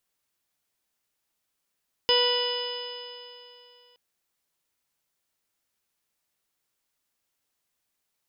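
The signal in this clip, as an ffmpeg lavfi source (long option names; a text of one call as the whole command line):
ffmpeg -f lavfi -i "aevalsrc='0.075*pow(10,-3*t/2.8)*sin(2*PI*488.16*t)+0.0398*pow(10,-3*t/2.8)*sin(2*PI*977.27*t)+0.0141*pow(10,-3*t/2.8)*sin(2*PI*1468.28*t)+0.0211*pow(10,-3*t/2.8)*sin(2*PI*1962.12*t)+0.0119*pow(10,-3*t/2.8)*sin(2*PI*2459.75*t)+0.0891*pow(10,-3*t/2.8)*sin(2*PI*2962.06*t)+0.0282*pow(10,-3*t/2.8)*sin(2*PI*3469.97*t)+0.0106*pow(10,-3*t/2.8)*sin(2*PI*3984.38*t)+0.00944*pow(10,-3*t/2.8)*sin(2*PI*4506.14*t)+0.0596*pow(10,-3*t/2.8)*sin(2*PI*5036.1*t)':duration=1.87:sample_rate=44100" out.wav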